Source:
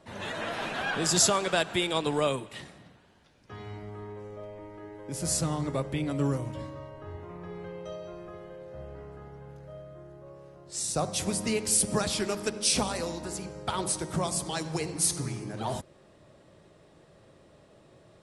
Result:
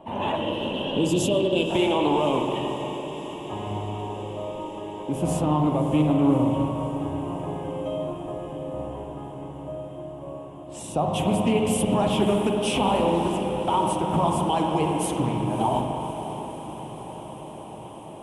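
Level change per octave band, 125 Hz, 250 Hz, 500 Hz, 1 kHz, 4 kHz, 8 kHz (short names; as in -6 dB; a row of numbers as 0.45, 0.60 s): +7.5, +10.5, +8.0, +10.0, +0.5, -8.0 dB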